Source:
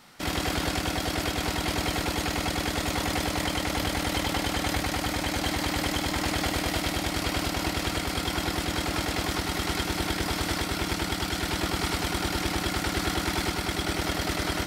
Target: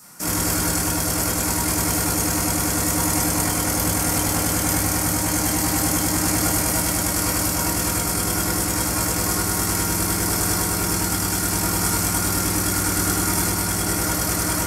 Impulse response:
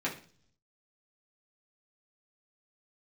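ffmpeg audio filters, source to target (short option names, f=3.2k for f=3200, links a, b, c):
-filter_complex "[0:a]aexciter=amount=9.3:drive=6.3:freq=5.4k[a];[1:a]atrim=start_sample=2205,asetrate=26460,aresample=44100[b];[a][b]afir=irnorm=-1:irlink=0,volume=-6dB"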